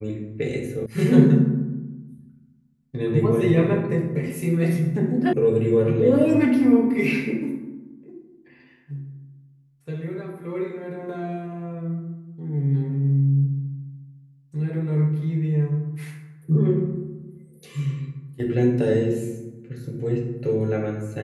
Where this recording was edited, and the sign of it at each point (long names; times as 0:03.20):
0:00.86: cut off before it has died away
0:05.33: cut off before it has died away